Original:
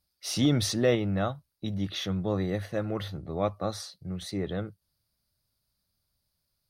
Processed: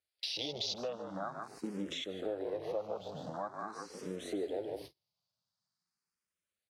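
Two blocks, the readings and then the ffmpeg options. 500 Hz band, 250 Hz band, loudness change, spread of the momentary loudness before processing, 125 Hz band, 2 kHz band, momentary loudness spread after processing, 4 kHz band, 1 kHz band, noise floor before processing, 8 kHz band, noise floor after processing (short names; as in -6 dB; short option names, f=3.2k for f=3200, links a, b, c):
-7.5 dB, -13.5 dB, -9.5 dB, 12 LU, -21.0 dB, -9.5 dB, 7 LU, -4.5 dB, -5.0 dB, -80 dBFS, -12.5 dB, under -85 dBFS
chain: -filter_complex "[0:a]aeval=exprs='val(0)+0.5*0.0282*sgn(val(0))':c=same,lowpass=7.8k,asplit=5[a][b][c][d][e];[b]adelay=150,afreqshift=-33,volume=-6dB[f];[c]adelay=300,afreqshift=-66,volume=-16.5dB[g];[d]adelay=450,afreqshift=-99,volume=-26.9dB[h];[e]adelay=600,afreqshift=-132,volume=-37.4dB[i];[a][f][g][h][i]amix=inputs=5:normalize=0,afwtdn=0.0251,highpass=450,agate=range=-40dB:threshold=-49dB:ratio=16:detection=peak,acompressor=threshold=-43dB:ratio=6,asplit=2[j][k];[k]afreqshift=0.45[l];[j][l]amix=inputs=2:normalize=1,volume=9.5dB"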